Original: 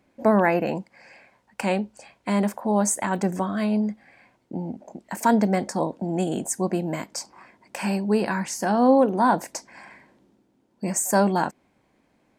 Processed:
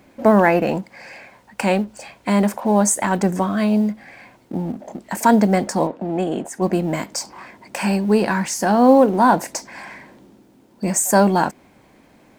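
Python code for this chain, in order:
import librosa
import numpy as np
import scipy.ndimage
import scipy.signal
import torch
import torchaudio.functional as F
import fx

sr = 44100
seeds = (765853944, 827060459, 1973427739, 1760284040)

y = fx.law_mismatch(x, sr, coded='mu')
y = fx.bass_treble(y, sr, bass_db=-7, treble_db=-14, at=(5.86, 6.61), fade=0.02)
y = F.gain(torch.from_numpy(y), 5.0).numpy()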